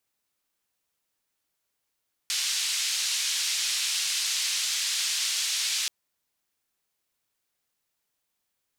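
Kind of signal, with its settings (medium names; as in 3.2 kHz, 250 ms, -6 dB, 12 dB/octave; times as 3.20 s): noise band 3.1–5.9 kHz, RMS -28 dBFS 3.58 s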